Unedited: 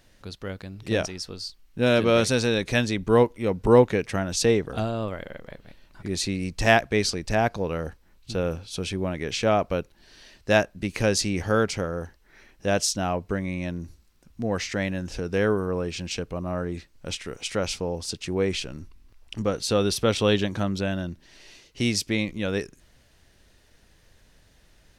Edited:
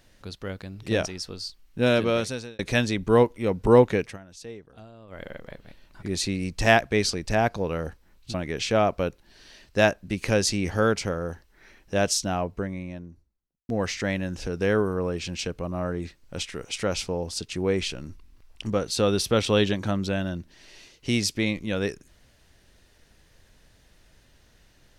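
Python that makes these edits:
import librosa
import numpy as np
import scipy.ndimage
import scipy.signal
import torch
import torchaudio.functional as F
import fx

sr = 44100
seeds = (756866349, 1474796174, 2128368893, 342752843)

y = fx.studio_fade_out(x, sr, start_s=12.84, length_s=1.57)
y = fx.edit(y, sr, fx.fade_out_span(start_s=1.86, length_s=0.73),
    fx.fade_down_up(start_s=4.01, length_s=1.24, db=-19.5, fade_s=0.17),
    fx.cut(start_s=8.34, length_s=0.72), tone=tone)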